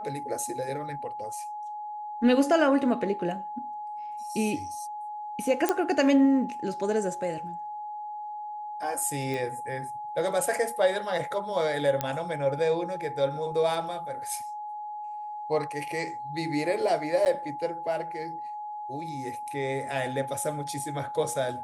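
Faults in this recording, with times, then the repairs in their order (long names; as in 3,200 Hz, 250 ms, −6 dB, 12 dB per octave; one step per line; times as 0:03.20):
whistle 840 Hz −34 dBFS
0:05.69: click −10 dBFS
0:09.34: click
0:12.01: click −12 dBFS
0:17.25–0:17.26: drop-out 9.4 ms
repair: click removal
notch filter 840 Hz, Q 30
repair the gap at 0:17.25, 9.4 ms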